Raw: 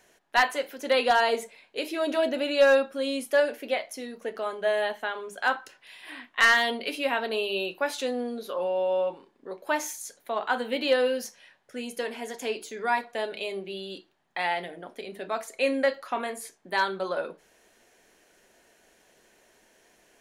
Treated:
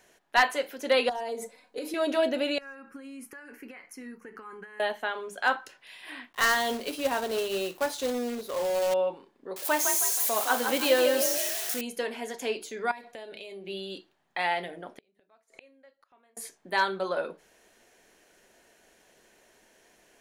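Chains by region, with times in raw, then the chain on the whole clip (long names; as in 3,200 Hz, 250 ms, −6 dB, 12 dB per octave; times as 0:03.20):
0:01.09–0:01.94: parametric band 2,800 Hz −12.5 dB 0.98 octaves + comb filter 4 ms, depth 88% + downward compressor 8 to 1, threshold −30 dBFS
0:02.58–0:04.80: high-shelf EQ 5,600 Hz −7 dB + downward compressor 20 to 1, threshold −33 dBFS + phaser with its sweep stopped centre 1,500 Hz, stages 4
0:06.33–0:08.94: parametric band 2,300 Hz −8.5 dB 1.1 octaves + log-companded quantiser 4 bits
0:09.56–0:11.81: spike at every zero crossing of −23.5 dBFS + echo with shifted repeats 159 ms, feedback 46%, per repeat +44 Hz, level −6 dB
0:12.91–0:13.67: parametric band 1,200 Hz −5.5 dB 0.83 octaves + downward compressor, threshold −39 dBFS
0:14.89–0:16.37: high-shelf EQ 8,700 Hz −8 dB + gate with flip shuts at −31 dBFS, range −33 dB
whole clip: no processing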